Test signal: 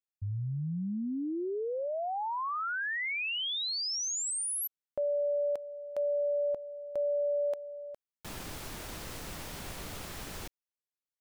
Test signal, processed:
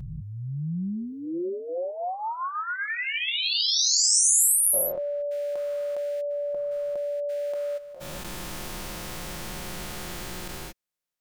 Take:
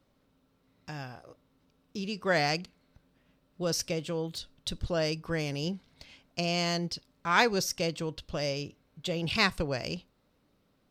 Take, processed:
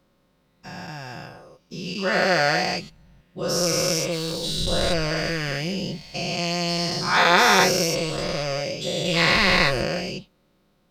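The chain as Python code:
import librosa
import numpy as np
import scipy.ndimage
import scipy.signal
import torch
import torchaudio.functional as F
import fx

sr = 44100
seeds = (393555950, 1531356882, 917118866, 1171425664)

y = fx.spec_dilate(x, sr, span_ms=480)
y = y + 0.48 * np.pad(y, (int(5.6 * sr / 1000.0), 0))[:len(y)]
y = y * librosa.db_to_amplitude(-1.0)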